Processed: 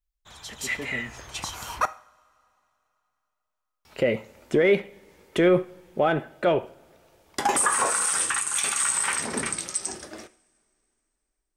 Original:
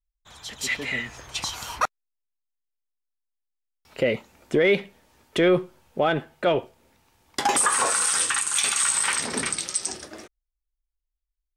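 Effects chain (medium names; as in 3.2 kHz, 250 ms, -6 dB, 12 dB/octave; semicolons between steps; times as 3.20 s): dynamic bell 4.1 kHz, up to -7 dB, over -41 dBFS, Q 0.97; two-slope reverb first 0.49 s, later 3.1 s, from -22 dB, DRR 13.5 dB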